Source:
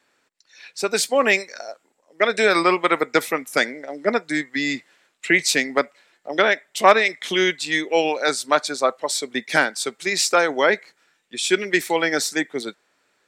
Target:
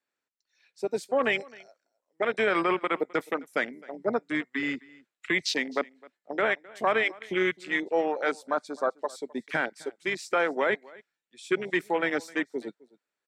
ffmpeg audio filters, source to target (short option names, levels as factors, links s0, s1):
-filter_complex "[0:a]afwtdn=0.0708,acrossover=split=120|6500[s0][s1][s2];[s1]alimiter=limit=0.316:level=0:latency=1:release=12[s3];[s0][s3][s2]amix=inputs=3:normalize=0,aecho=1:1:260:0.0708,volume=0.531"